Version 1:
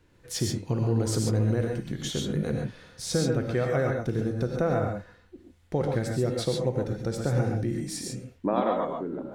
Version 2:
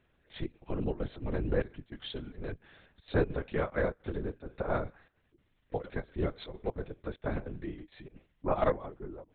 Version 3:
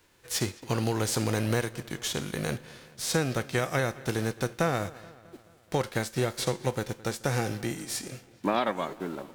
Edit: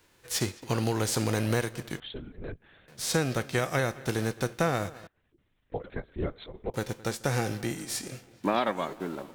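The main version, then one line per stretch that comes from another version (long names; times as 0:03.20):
3
0:02.00–0:02.88: punch in from 2
0:05.07–0:06.74: punch in from 2
not used: 1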